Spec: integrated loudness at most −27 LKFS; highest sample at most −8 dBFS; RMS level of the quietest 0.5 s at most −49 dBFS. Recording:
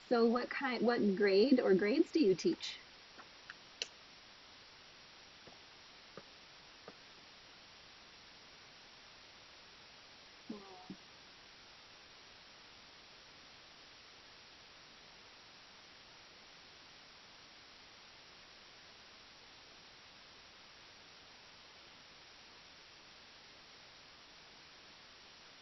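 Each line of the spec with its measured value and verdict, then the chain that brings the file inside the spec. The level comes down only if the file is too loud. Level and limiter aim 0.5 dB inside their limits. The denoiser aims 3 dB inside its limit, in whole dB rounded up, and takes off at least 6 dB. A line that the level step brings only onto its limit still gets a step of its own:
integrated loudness −34.0 LKFS: in spec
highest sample −17.5 dBFS: in spec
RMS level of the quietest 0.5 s −59 dBFS: in spec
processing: no processing needed

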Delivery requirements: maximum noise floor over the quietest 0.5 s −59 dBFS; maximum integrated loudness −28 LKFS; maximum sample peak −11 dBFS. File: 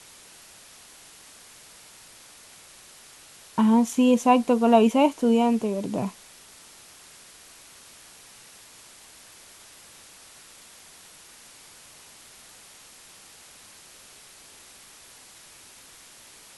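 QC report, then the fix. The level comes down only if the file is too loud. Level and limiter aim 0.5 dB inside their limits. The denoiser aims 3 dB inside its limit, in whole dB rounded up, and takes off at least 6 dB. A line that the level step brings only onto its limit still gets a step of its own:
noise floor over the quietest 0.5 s −50 dBFS: out of spec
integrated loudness −21.5 LKFS: out of spec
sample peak −5.5 dBFS: out of spec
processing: broadband denoise 6 dB, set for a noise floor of −50 dBFS
level −7 dB

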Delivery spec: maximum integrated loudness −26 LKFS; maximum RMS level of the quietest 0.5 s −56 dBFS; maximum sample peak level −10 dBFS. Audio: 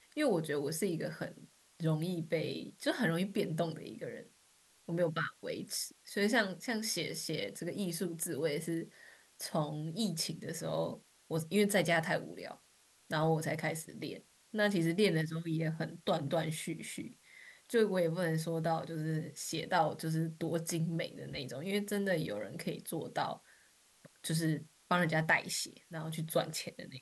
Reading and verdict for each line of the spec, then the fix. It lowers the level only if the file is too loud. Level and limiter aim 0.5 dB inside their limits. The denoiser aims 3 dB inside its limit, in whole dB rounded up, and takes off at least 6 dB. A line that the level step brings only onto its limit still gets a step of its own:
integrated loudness −35.5 LKFS: in spec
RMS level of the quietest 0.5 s −67 dBFS: in spec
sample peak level −15.5 dBFS: in spec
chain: no processing needed

